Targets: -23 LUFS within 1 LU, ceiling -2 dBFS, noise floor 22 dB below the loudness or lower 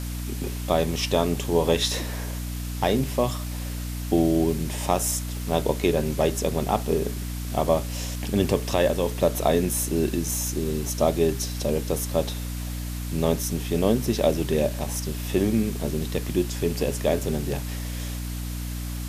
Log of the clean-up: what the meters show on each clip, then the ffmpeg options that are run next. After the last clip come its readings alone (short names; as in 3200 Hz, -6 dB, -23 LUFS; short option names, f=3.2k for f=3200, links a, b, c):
hum 60 Hz; harmonics up to 300 Hz; hum level -29 dBFS; noise floor -31 dBFS; noise floor target -48 dBFS; loudness -25.5 LUFS; peak -7.0 dBFS; loudness target -23.0 LUFS
-> -af "bandreject=f=60:t=h:w=4,bandreject=f=120:t=h:w=4,bandreject=f=180:t=h:w=4,bandreject=f=240:t=h:w=4,bandreject=f=300:t=h:w=4"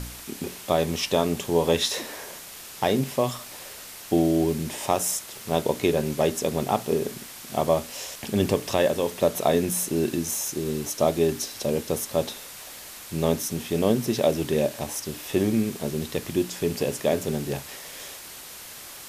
hum none; noise floor -42 dBFS; noise floor target -48 dBFS
-> -af "afftdn=nr=6:nf=-42"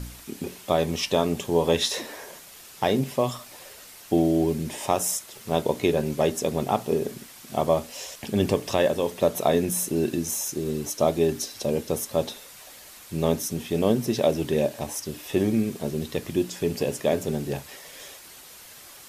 noise floor -46 dBFS; noise floor target -48 dBFS
-> -af "afftdn=nr=6:nf=-46"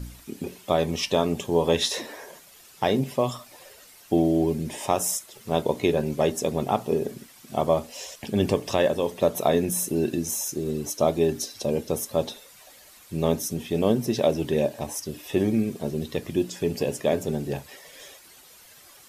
noise floor -51 dBFS; loudness -26.0 LUFS; peak -7.5 dBFS; loudness target -23.0 LUFS
-> -af "volume=3dB"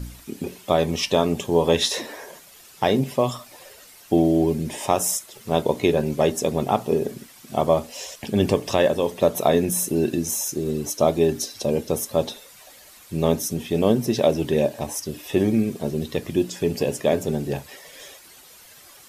loudness -23.0 LUFS; peak -4.5 dBFS; noise floor -48 dBFS